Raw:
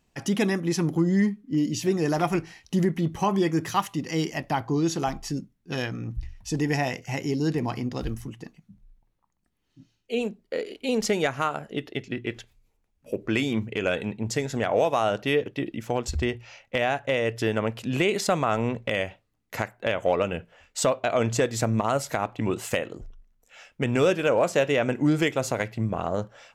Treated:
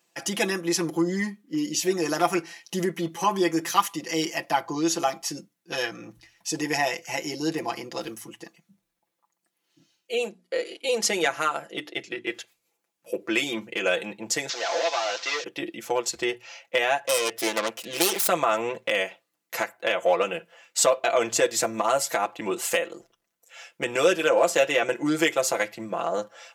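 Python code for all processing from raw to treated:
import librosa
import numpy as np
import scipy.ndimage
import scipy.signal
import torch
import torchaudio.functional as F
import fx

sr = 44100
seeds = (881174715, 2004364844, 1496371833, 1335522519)

y = fx.chain(x, sr, fx.steep_lowpass(hz=12000.0, slope=96),
    fx.hum_notches(base_hz=60, count=5), at=(10.25, 12.27))
y = fx.chain(y, sr, fx.delta_mod(bps=32000, step_db=-39.5),
    fx.highpass(hz=370.0, slope=12),
    fx.tilt_eq(slope=4.0), at=(14.49, 15.44))
y = fx.chain(y, sr, fx.self_delay(depth_ms=0.36),
    fx.highpass(hz=160.0, slope=12), at=(17.07, 18.28))
y = scipy.signal.sosfilt(scipy.signal.butter(2, 380.0, 'highpass', fs=sr, output='sos'), y)
y = fx.high_shelf(y, sr, hz=4800.0, db=7.0)
y = y + 0.86 * np.pad(y, (int(5.9 * sr / 1000.0), 0))[:len(y)]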